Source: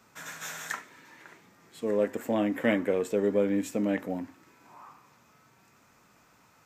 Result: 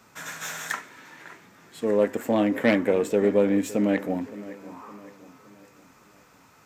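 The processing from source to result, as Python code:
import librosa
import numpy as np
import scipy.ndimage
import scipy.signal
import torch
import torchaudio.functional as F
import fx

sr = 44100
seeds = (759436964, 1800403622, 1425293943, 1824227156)

y = fx.self_delay(x, sr, depth_ms=0.066)
y = fx.echo_wet_lowpass(y, sr, ms=564, feedback_pct=44, hz=3200.0, wet_db=-17.0)
y = F.gain(torch.from_numpy(y), 5.0).numpy()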